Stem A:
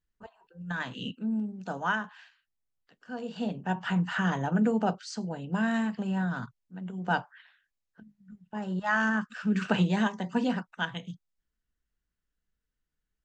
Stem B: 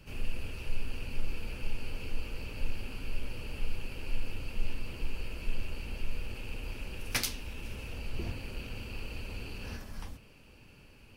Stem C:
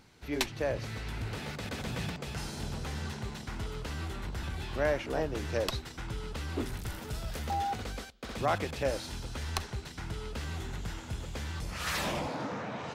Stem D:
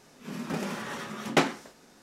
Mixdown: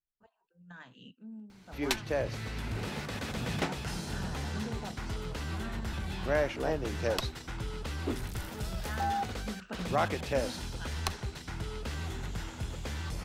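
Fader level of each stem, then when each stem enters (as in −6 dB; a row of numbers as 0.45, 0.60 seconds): −16.0 dB, muted, +0.5 dB, −11.0 dB; 0.00 s, muted, 1.50 s, 2.25 s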